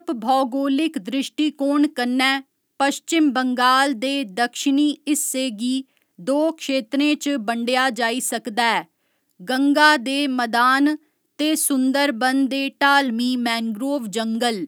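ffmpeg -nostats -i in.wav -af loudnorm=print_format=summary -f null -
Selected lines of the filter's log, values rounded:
Input Integrated:    -20.0 LUFS
Input True Peak:      -2.0 dBTP
Input LRA:             2.8 LU
Input Threshold:     -30.2 LUFS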